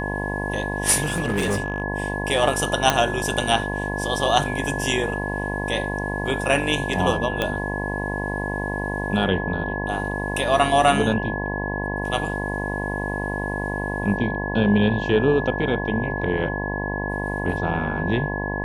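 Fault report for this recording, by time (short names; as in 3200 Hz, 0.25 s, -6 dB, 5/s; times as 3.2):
buzz 50 Hz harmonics 21 -28 dBFS
tone 1700 Hz -29 dBFS
1.03–1.82 clipped -18.5 dBFS
2.9 pop -2 dBFS
7.42 pop -9 dBFS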